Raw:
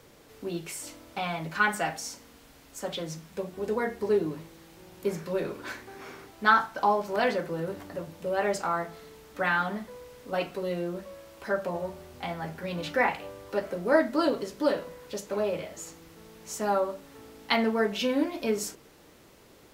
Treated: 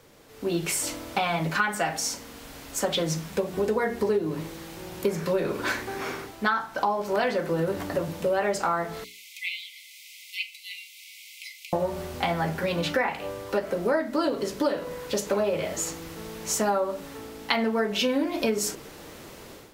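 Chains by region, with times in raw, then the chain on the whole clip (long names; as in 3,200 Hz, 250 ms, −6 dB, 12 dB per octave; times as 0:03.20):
0:09.04–0:11.73: linear-phase brick-wall high-pass 2,000 Hz + high-shelf EQ 2,600 Hz −5 dB + multiband upward and downward compressor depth 40%
whole clip: automatic gain control gain up to 12 dB; mains-hum notches 60/120/180/240/300/360/420 Hz; downward compressor 6 to 1, threshold −22 dBFS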